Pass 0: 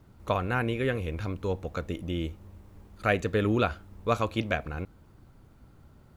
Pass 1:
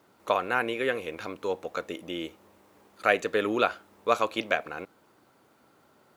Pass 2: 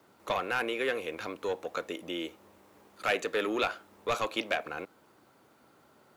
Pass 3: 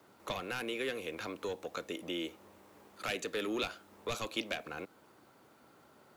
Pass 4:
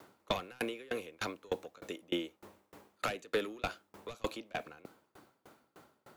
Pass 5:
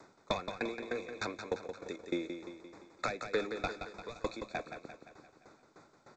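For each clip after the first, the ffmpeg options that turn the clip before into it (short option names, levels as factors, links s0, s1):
-af "highpass=400,volume=1.5"
-filter_complex "[0:a]acrossover=split=230|2300[s0][s1][s2];[s0]acompressor=threshold=0.00251:ratio=6[s3];[s1]asoftclip=type=tanh:threshold=0.0562[s4];[s3][s4][s2]amix=inputs=3:normalize=0"
-filter_complex "[0:a]acrossover=split=310|3000[s0][s1][s2];[s1]acompressor=threshold=0.01:ratio=4[s3];[s0][s3][s2]amix=inputs=3:normalize=0"
-filter_complex "[0:a]acrossover=split=1400[s0][s1];[s1]alimiter=level_in=2.37:limit=0.0631:level=0:latency=1:release=83,volume=0.422[s2];[s0][s2]amix=inputs=2:normalize=0,aeval=exprs='val(0)*pow(10,-31*if(lt(mod(3.3*n/s,1),2*abs(3.3)/1000),1-mod(3.3*n/s,1)/(2*abs(3.3)/1000),(mod(3.3*n/s,1)-2*abs(3.3)/1000)/(1-2*abs(3.3)/1000))/20)':c=same,volume=2.66"
-af "asuperstop=centerf=3000:order=20:qfactor=3.5,aecho=1:1:173|346|519|692|865|1038:0.398|0.211|0.112|0.0593|0.0314|0.0166" -ar 16000 -c:a g722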